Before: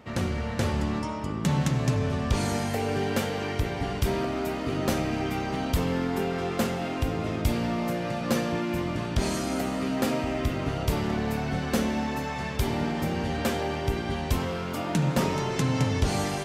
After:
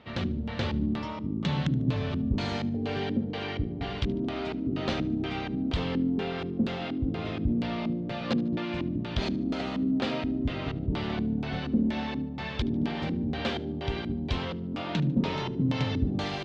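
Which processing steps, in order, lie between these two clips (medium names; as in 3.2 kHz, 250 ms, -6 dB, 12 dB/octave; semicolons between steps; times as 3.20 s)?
low-pass 6.7 kHz 12 dB/octave; LFO low-pass square 2.1 Hz 270–3700 Hz; on a send: thinning echo 74 ms, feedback 42%, level -20 dB; on the sum: trim -4 dB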